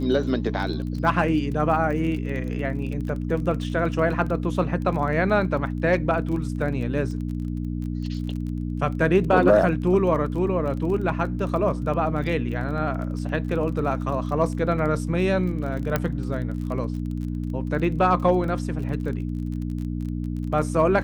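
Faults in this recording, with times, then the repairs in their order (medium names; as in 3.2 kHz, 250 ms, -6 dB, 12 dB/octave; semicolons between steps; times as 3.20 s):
crackle 25 per s -32 dBFS
hum 60 Hz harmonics 5 -28 dBFS
15.96 s: pop -8 dBFS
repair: de-click; de-hum 60 Hz, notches 5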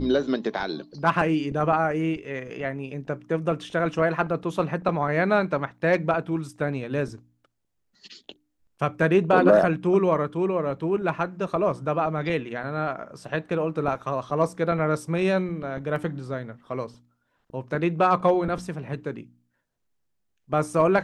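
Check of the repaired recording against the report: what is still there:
15.96 s: pop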